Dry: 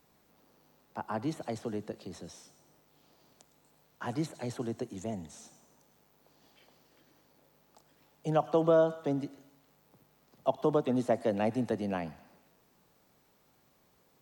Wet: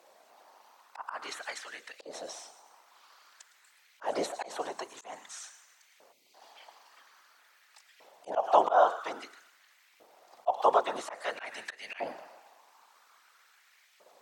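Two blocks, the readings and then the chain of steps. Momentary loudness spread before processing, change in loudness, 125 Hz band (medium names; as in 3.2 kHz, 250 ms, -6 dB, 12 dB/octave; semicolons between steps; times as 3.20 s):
17 LU, +0.5 dB, under -25 dB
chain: treble shelf 8.1 kHz +9 dB; time-frequency box 6.12–6.35 s, 330–2000 Hz -23 dB; hum notches 60/120/180/240/300/360/420/480/540 Hz; whisper effect; LFO high-pass saw up 0.5 Hz 540–2200 Hz; slow attack 158 ms; distance through air 52 m; trim +7.5 dB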